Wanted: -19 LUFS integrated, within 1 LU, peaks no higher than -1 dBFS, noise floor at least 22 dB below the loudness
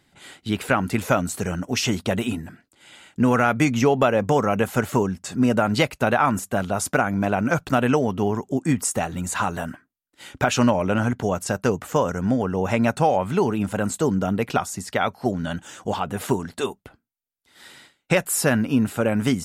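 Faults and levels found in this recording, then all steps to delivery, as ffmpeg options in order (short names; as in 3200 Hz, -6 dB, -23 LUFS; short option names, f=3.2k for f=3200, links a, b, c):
loudness -22.5 LUFS; peak -6.0 dBFS; loudness target -19.0 LUFS
-> -af "volume=3.5dB"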